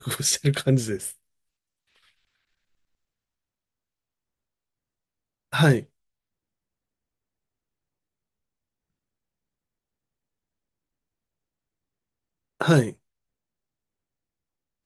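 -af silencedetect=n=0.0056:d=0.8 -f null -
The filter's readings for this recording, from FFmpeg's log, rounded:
silence_start: 1.15
silence_end: 5.52 | silence_duration: 4.38
silence_start: 5.85
silence_end: 12.60 | silence_duration: 6.76
silence_start: 12.94
silence_end: 14.86 | silence_duration: 1.92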